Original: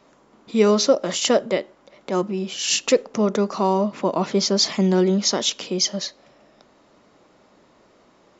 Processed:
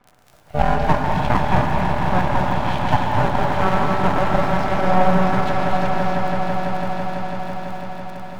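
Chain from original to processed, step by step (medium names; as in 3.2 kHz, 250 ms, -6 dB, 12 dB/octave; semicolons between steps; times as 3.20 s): low-pass 2.2 kHz 24 dB/octave; ring modulator 370 Hz; echo with a slow build-up 166 ms, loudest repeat 5, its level -9.5 dB; half-wave rectifier; crackle 28 per s -37 dBFS; gated-style reverb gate 310 ms rising, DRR 1.5 dB; trim +5 dB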